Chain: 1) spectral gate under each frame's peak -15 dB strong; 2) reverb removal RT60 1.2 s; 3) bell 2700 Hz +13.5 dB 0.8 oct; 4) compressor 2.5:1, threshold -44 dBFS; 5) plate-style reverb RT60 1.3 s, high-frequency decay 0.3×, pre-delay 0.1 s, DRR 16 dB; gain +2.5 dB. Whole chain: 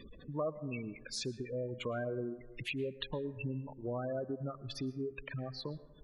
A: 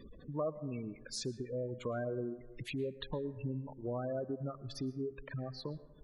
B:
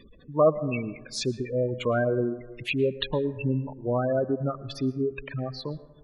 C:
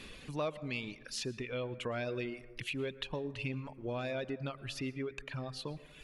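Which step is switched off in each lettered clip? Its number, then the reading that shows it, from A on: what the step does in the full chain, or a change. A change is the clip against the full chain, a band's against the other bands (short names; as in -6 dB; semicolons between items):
3, 2 kHz band -5.5 dB; 4, mean gain reduction 9.5 dB; 1, 2 kHz band +4.0 dB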